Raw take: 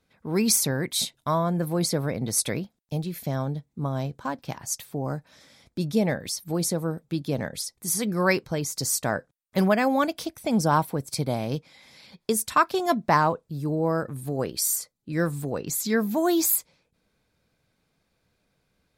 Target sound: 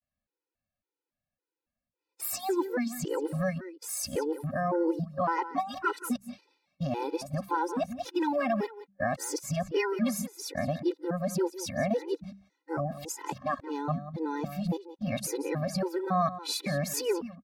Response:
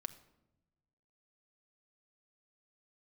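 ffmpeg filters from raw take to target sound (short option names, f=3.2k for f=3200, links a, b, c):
-filter_complex "[0:a]areverse,agate=range=-23dB:threshold=-47dB:ratio=16:detection=peak,lowpass=f=1.8k:p=1,equalizer=f=140:t=o:w=1.2:g=-5,bandreject=f=60:t=h:w=6,bandreject=f=120:t=h:w=6,bandreject=f=180:t=h:w=6,asplit=2[a][b];[b]acompressor=threshold=-33dB:ratio=6,volume=-0.5dB[c];[a][c]amix=inputs=2:normalize=0,alimiter=limit=-17.5dB:level=0:latency=1:release=251,asplit=2[d][e];[e]adelay=192.4,volume=-13dB,highshelf=f=4k:g=-4.33[f];[d][f]amix=inputs=2:normalize=0,asetrate=48000,aresample=44100,afftfilt=real='re*gt(sin(2*PI*1.8*pts/sr)*(1-2*mod(floor(b*sr/1024/260),2)),0)':imag='im*gt(sin(2*PI*1.8*pts/sr)*(1-2*mod(floor(b*sr/1024/260),2)),0)':win_size=1024:overlap=0.75,volume=1.5dB"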